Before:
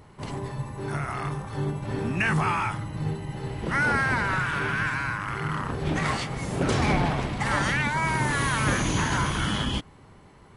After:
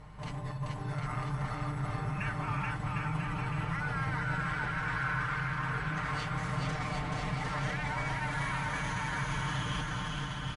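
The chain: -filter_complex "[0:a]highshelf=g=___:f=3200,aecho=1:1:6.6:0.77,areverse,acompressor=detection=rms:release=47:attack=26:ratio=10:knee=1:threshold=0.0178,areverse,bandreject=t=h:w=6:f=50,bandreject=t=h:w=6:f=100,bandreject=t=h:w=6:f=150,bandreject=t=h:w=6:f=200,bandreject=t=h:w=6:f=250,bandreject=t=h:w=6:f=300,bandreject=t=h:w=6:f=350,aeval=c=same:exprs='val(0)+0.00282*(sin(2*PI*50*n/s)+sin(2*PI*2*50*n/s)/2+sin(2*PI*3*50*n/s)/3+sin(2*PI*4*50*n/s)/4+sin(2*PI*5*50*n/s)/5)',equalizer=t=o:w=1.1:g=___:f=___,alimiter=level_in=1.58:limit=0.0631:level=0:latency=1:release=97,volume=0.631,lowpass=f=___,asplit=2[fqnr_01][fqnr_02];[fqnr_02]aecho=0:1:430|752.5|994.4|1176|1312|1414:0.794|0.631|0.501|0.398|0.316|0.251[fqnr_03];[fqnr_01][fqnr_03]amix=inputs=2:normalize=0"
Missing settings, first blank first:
-7, -10, 360, 9600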